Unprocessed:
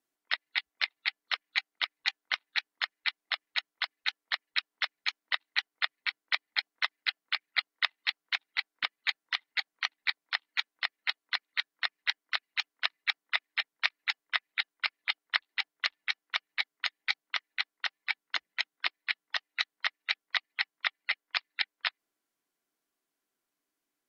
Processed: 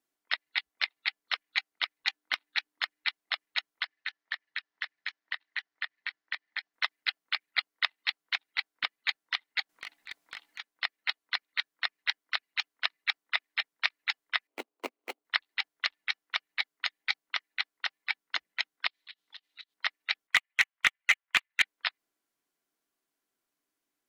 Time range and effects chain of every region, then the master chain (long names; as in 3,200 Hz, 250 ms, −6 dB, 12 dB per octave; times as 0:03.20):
0:02.07–0:03.08: parametric band 300 Hz +7.5 dB 0.34 octaves + hard clipping −12 dBFS
0:03.83–0:06.74: downward compressor 4 to 1, threshold −34 dBFS + loudspeaker in its box 120–6,100 Hz, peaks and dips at 250 Hz −7 dB, 470 Hz −6 dB, 1,800 Hz +8 dB
0:09.69–0:10.60: compressor whose output falls as the input rises −41 dBFS + hum removal 139 Hz, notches 6 + hard clipping −31.5 dBFS
0:14.47–0:15.25: running median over 25 samples + Chebyshev high-pass filter 240 Hz, order 5 + parametric band 450 Hz +7 dB 2 octaves
0:18.87–0:19.74: parametric band 3,700 Hz +14 dB 1 octave + volume swells 105 ms + downward compressor 20 to 1, threshold −42 dBFS
0:20.27–0:21.62: high-pass filter 910 Hz + high shelf with overshoot 4,000 Hz −12.5 dB, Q 1.5 + leveller curve on the samples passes 2
whole clip: no processing